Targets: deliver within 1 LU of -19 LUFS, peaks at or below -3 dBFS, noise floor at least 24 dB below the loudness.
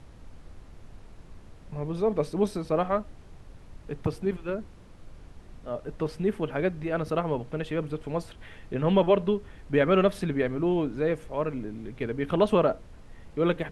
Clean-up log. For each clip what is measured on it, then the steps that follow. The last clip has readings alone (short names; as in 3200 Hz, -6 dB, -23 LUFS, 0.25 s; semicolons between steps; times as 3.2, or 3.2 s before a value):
noise floor -49 dBFS; noise floor target -52 dBFS; loudness -28.0 LUFS; peak -9.0 dBFS; loudness target -19.0 LUFS
-> noise print and reduce 6 dB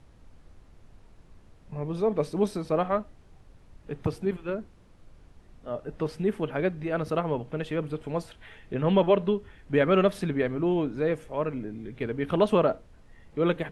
noise floor -55 dBFS; loudness -28.0 LUFS; peak -9.0 dBFS; loudness target -19.0 LUFS
-> gain +9 dB; limiter -3 dBFS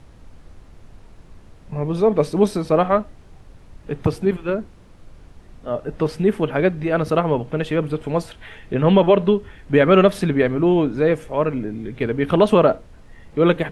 loudness -19.5 LUFS; peak -3.0 dBFS; noise floor -46 dBFS